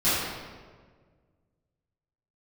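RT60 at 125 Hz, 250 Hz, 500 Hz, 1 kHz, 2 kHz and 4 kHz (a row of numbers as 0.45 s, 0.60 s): 2.3 s, 1.9 s, 1.8 s, 1.4 s, 1.2 s, 1.0 s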